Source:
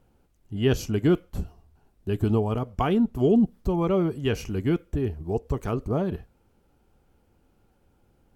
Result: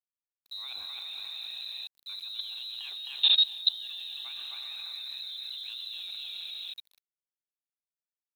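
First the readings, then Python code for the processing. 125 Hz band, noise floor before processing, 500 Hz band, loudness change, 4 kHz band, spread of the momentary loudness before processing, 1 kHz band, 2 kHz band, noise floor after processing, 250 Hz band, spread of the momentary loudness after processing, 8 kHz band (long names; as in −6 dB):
below −40 dB, −66 dBFS, below −40 dB, −5.5 dB, +16.0 dB, 11 LU, below −20 dB, −6.5 dB, below −85 dBFS, below −40 dB, 16 LU, can't be measured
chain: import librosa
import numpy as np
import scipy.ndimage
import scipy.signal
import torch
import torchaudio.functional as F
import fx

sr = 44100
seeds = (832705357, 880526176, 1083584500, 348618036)

y = fx.tremolo_random(x, sr, seeds[0], hz=3.5, depth_pct=55)
y = fx.peak_eq(y, sr, hz=1500.0, db=9.0, octaves=0.48)
y = fx.hum_notches(y, sr, base_hz=60, count=3)
y = y + 10.0 ** (-5.0 / 20.0) * np.pad(y, (int(263 * sr / 1000.0), 0))[:len(y)]
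y = fx.rev_gated(y, sr, seeds[1], gate_ms=500, shape='rising', drr_db=6.0)
y = fx.level_steps(y, sr, step_db=20)
y = fx.freq_invert(y, sr, carrier_hz=4000)
y = fx.low_shelf(y, sr, hz=66.0, db=-9.5)
y = np.where(np.abs(y) >= 10.0 ** (-51.0 / 20.0), y, 0.0)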